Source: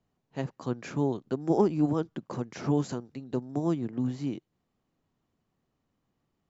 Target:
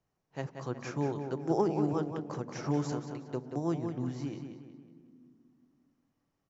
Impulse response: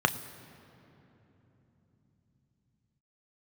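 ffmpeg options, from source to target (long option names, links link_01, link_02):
-filter_complex "[0:a]equalizer=frequency=5500:width=4.2:gain=11.5,asplit=2[link_01][link_02];[link_02]adelay=183,lowpass=frequency=4400:poles=1,volume=-6.5dB,asplit=2[link_03][link_04];[link_04]adelay=183,lowpass=frequency=4400:poles=1,volume=0.46,asplit=2[link_05][link_06];[link_06]adelay=183,lowpass=frequency=4400:poles=1,volume=0.46,asplit=2[link_07][link_08];[link_08]adelay=183,lowpass=frequency=4400:poles=1,volume=0.46,asplit=2[link_09][link_10];[link_10]adelay=183,lowpass=frequency=4400:poles=1,volume=0.46[link_11];[link_01][link_03][link_05][link_07][link_09][link_11]amix=inputs=6:normalize=0,asplit=2[link_12][link_13];[1:a]atrim=start_sample=2205,asetrate=79380,aresample=44100[link_14];[link_13][link_14]afir=irnorm=-1:irlink=0,volume=-15.5dB[link_15];[link_12][link_15]amix=inputs=2:normalize=0,volume=-4.5dB"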